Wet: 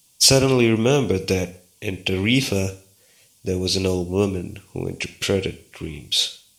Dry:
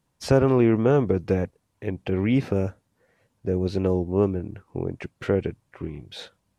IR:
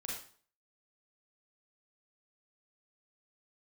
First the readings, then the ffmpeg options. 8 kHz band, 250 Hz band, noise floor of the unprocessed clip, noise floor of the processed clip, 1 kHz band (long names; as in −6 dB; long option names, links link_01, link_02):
can't be measured, +1.5 dB, −74 dBFS, −58 dBFS, +1.5 dB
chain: -filter_complex "[0:a]aexciter=amount=6.7:drive=8.4:freq=2500,bandreject=frequency=4000:width=18,asplit=2[link_01][link_02];[1:a]atrim=start_sample=2205[link_03];[link_02][link_03]afir=irnorm=-1:irlink=0,volume=-10.5dB[link_04];[link_01][link_04]amix=inputs=2:normalize=0"